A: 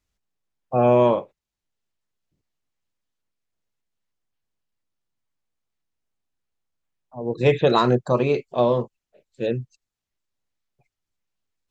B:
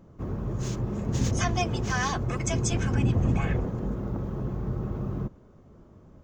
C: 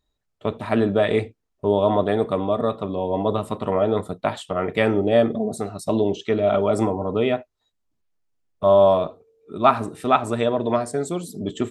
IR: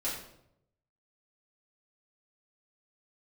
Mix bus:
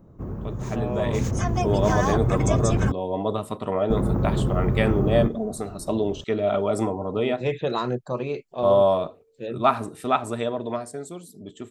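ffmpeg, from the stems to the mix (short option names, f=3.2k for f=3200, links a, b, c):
-filter_complex "[0:a]volume=-17.5dB[a];[1:a]acrossover=split=1000|7300[b][c][d];[b]acompressor=threshold=-30dB:ratio=4[e];[c]acompressor=threshold=-37dB:ratio=4[f];[d]acompressor=threshold=-43dB:ratio=4[g];[e][f][g]amix=inputs=3:normalize=0,equalizer=f=4k:w=0.52:g=-12,volume=2dB,asplit=3[h][i][j];[h]atrim=end=2.92,asetpts=PTS-STARTPTS,afade=t=out:st=2.916:d=0.004:c=hsin[k];[i]atrim=start=2.92:end=3.9,asetpts=PTS-STARTPTS,volume=0[l];[j]atrim=start=3.9,asetpts=PTS-STARTPTS,afade=t=in:d=0.004:c=hsin[m];[k][l][m]concat=n=3:v=0:a=1[n];[2:a]highshelf=f=7.2k:g=6.5,volume=-13dB[o];[a][n][o]amix=inputs=3:normalize=0,dynaudnorm=f=240:g=11:m=9.5dB"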